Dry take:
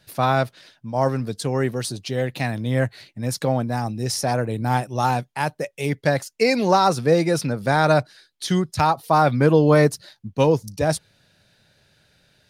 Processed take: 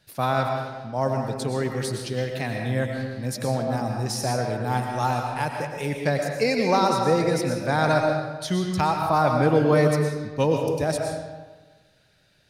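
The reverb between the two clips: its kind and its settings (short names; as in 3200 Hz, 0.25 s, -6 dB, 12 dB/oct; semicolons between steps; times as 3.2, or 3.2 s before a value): digital reverb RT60 1.3 s, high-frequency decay 0.7×, pre-delay 75 ms, DRR 2 dB; gain -4.5 dB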